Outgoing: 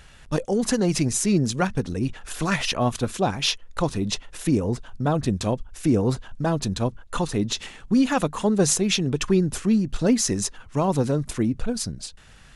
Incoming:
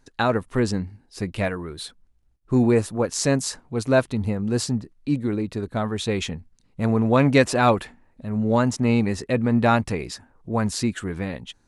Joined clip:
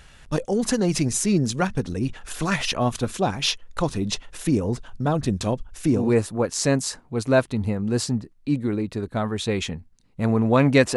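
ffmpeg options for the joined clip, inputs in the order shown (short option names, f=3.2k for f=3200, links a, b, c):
-filter_complex "[0:a]apad=whole_dur=10.96,atrim=end=10.96,atrim=end=6.16,asetpts=PTS-STARTPTS[a];[1:a]atrim=start=2.5:end=7.56,asetpts=PTS-STARTPTS[b];[a][b]acrossfade=d=0.26:c1=tri:c2=tri"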